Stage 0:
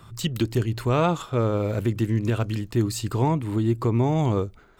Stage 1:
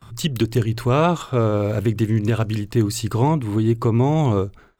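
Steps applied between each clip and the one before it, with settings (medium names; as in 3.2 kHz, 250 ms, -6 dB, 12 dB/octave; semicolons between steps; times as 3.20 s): gate with hold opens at -41 dBFS; trim +4 dB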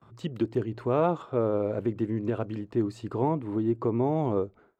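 band-pass filter 480 Hz, Q 0.75; trim -4.5 dB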